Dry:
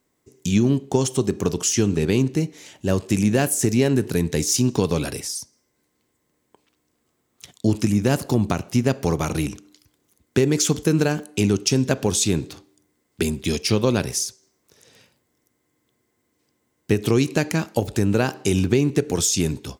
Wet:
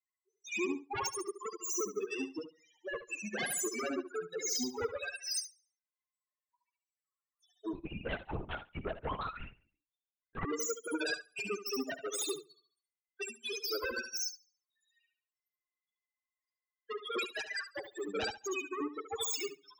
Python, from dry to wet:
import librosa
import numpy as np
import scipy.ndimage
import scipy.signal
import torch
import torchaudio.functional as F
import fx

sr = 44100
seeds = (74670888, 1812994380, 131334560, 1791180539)

y = fx.tracing_dist(x, sr, depth_ms=0.086)
y = fx.dereverb_blind(y, sr, rt60_s=1.1)
y = scipy.signal.sosfilt(scipy.signal.butter(2, 950.0, 'highpass', fs=sr, output='sos'), y)
y = fx.spec_topn(y, sr, count=2)
y = fx.fold_sine(y, sr, drive_db=11, ceiling_db=-28.0)
y = fx.echo_feedback(y, sr, ms=71, feedback_pct=39, wet_db=-4.5)
y = fx.lpc_vocoder(y, sr, seeds[0], excitation='whisper', order=8, at=(7.73, 10.45))
y = fx.upward_expand(y, sr, threshold_db=-42.0, expansion=2.5)
y = y * 10.0 ** (-2.0 / 20.0)